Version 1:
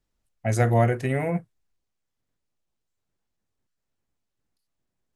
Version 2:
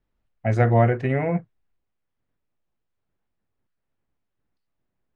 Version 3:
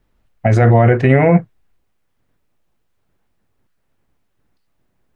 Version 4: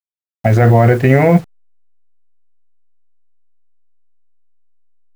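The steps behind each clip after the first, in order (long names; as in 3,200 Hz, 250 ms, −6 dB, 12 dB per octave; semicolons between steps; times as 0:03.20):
low-pass filter 2,600 Hz 12 dB per octave; level +2.5 dB
boost into a limiter +14 dB; level −1 dB
hold until the input has moved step −33.5 dBFS; level +1 dB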